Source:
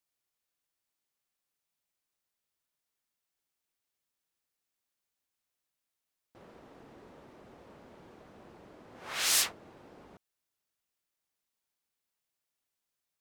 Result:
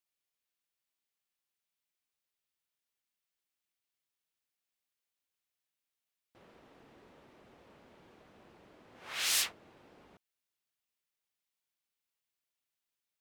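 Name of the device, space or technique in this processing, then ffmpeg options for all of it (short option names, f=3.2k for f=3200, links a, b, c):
presence and air boost: -af "equalizer=f=2.8k:t=o:w=1.6:g=5.5,highshelf=f=10k:g=3.5,volume=-6.5dB"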